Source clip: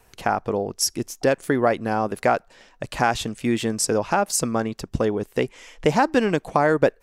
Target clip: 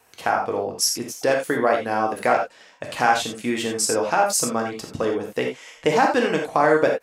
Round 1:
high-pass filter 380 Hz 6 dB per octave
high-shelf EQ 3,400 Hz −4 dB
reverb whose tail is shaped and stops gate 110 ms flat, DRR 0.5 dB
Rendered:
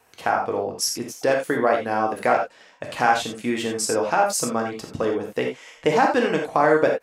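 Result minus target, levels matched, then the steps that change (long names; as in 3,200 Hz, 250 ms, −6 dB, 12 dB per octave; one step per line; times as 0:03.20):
8,000 Hz band −3.0 dB
remove: high-shelf EQ 3,400 Hz −4 dB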